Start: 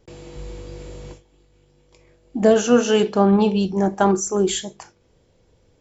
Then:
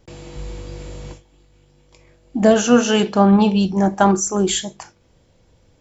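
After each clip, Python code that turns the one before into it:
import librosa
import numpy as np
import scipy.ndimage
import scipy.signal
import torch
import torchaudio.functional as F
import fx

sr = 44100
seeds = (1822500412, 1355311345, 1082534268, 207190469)

y = fx.peak_eq(x, sr, hz=420.0, db=-6.5, octaves=0.48)
y = F.gain(torch.from_numpy(y), 4.0).numpy()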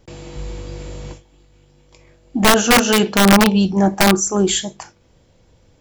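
y = (np.mod(10.0 ** (7.0 / 20.0) * x + 1.0, 2.0) - 1.0) / 10.0 ** (7.0 / 20.0)
y = F.gain(torch.from_numpy(y), 2.0).numpy()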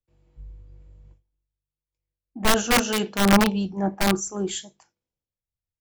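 y = fx.band_widen(x, sr, depth_pct=100)
y = F.gain(torch.from_numpy(y), -10.5).numpy()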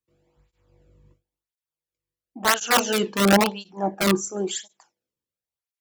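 y = fx.flanger_cancel(x, sr, hz=0.96, depth_ms=1.5)
y = F.gain(torch.from_numpy(y), 4.0).numpy()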